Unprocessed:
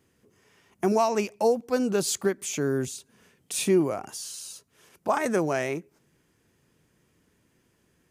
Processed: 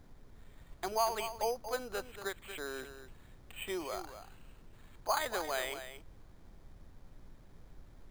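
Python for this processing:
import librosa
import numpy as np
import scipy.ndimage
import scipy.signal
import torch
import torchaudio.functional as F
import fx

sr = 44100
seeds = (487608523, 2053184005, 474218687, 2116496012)

p1 = scipy.signal.sosfilt(scipy.signal.butter(2, 790.0, 'highpass', fs=sr, output='sos'), x)
p2 = fx.dmg_noise_colour(p1, sr, seeds[0], colour='brown', level_db=-49.0)
p3 = p2 + fx.echo_single(p2, sr, ms=233, db=-10.5, dry=0)
p4 = np.repeat(scipy.signal.resample_poly(p3, 1, 8), 8)[:len(p3)]
y = p4 * librosa.db_to_amplitude(-4.0)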